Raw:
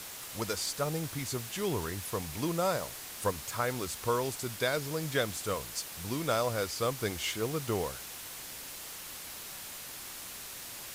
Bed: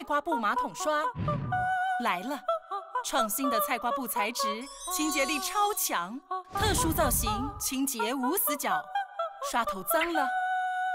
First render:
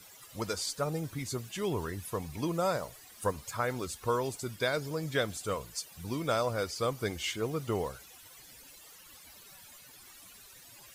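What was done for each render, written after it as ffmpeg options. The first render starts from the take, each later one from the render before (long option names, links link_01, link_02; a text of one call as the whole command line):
ffmpeg -i in.wav -af "afftdn=noise_reduction=15:noise_floor=-44" out.wav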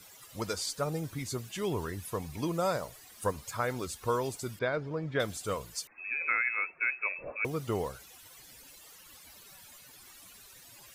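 ffmpeg -i in.wav -filter_complex "[0:a]asettb=1/sr,asplit=3[link_01][link_02][link_03];[link_01]atrim=end=4.594[link_04];[link_02]atrim=start=4.59:end=5.2,asetpts=PTS-STARTPTS,afade=type=in:duration=0.004:curve=qsin,afade=type=out:start_time=0.606:duration=0.004:curve=qsin,lowpass=2100[link_05];[link_03]atrim=start=5.196[link_06];[link_04][link_05]acrossfade=duration=0.004:curve1=hsin:curve2=qsin[link_07];[link_07][link_06]acrossfade=duration=0.004:curve1=qsin:curve2=hsin,asettb=1/sr,asplit=3[link_08][link_09][link_10];[link_08]atrim=end=5.874[link_11];[link_09]atrim=start=5.87:end=7.45,asetpts=PTS-STARTPTS,afade=type=in:duration=0.004:curve=qsin,afade=type=out:start_time=1.576:duration=0.004:curve=qsin,lowpass=frequency=2300:width_type=q:width=0.5098,lowpass=frequency=2300:width_type=q:width=0.6013,lowpass=frequency=2300:width_type=q:width=0.9,lowpass=frequency=2300:width_type=q:width=2.563,afreqshift=-2700[link_12];[link_10]atrim=start=7.446[link_13];[link_11][link_12]acrossfade=duration=0.004:curve1=hsin:curve2=qsin[link_14];[link_14][link_13]acrossfade=duration=0.004:curve1=qsin:curve2=hsin" out.wav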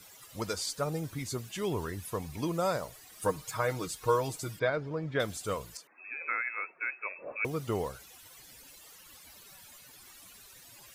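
ffmpeg -i in.wav -filter_complex "[0:a]asettb=1/sr,asplit=3[link_01][link_02][link_03];[link_01]atrim=end=3.124[link_04];[link_02]atrim=start=3.12:end=4.7,asetpts=PTS-STARTPTS,afade=type=in:duration=0.004:curve=qsin,afade=type=out:start_time=1.576:duration=0.004:curve=qsin,aecho=1:1:6.4:0.65,atrim=end_sample=69678[link_05];[link_03]atrim=start=4.696[link_06];[link_04][link_05]acrossfade=duration=0.004:curve1=hsin:curve2=qsin[link_07];[link_07][link_06]acrossfade=duration=0.004:curve1=qsin:curve2=hsin,asettb=1/sr,asplit=3[link_08][link_09][link_10];[link_08]atrim=end=5.774[link_11];[link_09]atrim=start=5.77:end=7.31,asetpts=PTS-STARTPTS,afade=type=in:duration=0.004:curve=qsin,afade=type=out:start_time=1.536:duration=0.004:curve=qsin,acrossover=split=190 2100:gain=0.0794 1 0.178[link_12][link_13][link_14];[link_12][link_13][link_14]amix=inputs=3:normalize=0[link_15];[link_10]atrim=start=7.306[link_16];[link_11][link_15]acrossfade=duration=0.004:curve1=hsin:curve2=qsin[link_17];[link_17][link_16]acrossfade=duration=0.004:curve1=qsin:curve2=hsin" out.wav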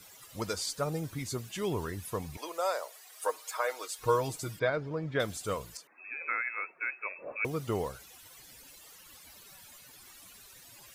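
ffmpeg -i in.wav -filter_complex "[0:a]asettb=1/sr,asplit=3[link_01][link_02][link_03];[link_01]atrim=end=2.374[link_04];[link_02]atrim=start=2.37:end=3.99,asetpts=PTS-STARTPTS,afade=type=in:duration=0.004:curve=qsin,afade=type=out:start_time=1.616:duration=0.004:curve=qsin,highpass=frequency=480:width=0.5412,highpass=frequency=480:width=1.3066[link_05];[link_03]atrim=start=3.986[link_06];[link_04][link_05]acrossfade=duration=0.004:curve1=hsin:curve2=qsin[link_07];[link_07][link_06]acrossfade=duration=0.004:curve1=qsin:curve2=hsin" out.wav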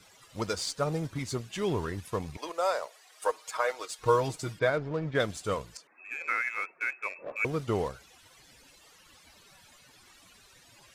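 ffmpeg -i in.wav -filter_complex "[0:a]asplit=2[link_01][link_02];[link_02]acrusher=bits=5:mix=0:aa=0.5,volume=-8dB[link_03];[link_01][link_03]amix=inputs=2:normalize=0,adynamicsmooth=sensitivity=4:basefreq=7600" out.wav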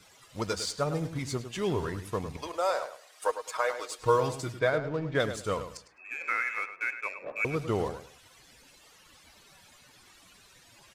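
ffmpeg -i in.wav -filter_complex "[0:a]asplit=2[link_01][link_02];[link_02]adelay=104,lowpass=frequency=3500:poles=1,volume=-10dB,asplit=2[link_03][link_04];[link_04]adelay=104,lowpass=frequency=3500:poles=1,volume=0.24,asplit=2[link_05][link_06];[link_06]adelay=104,lowpass=frequency=3500:poles=1,volume=0.24[link_07];[link_01][link_03][link_05][link_07]amix=inputs=4:normalize=0" out.wav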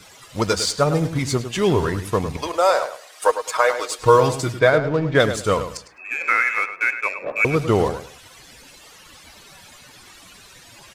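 ffmpeg -i in.wav -af "volume=11.5dB,alimiter=limit=-2dB:level=0:latency=1" out.wav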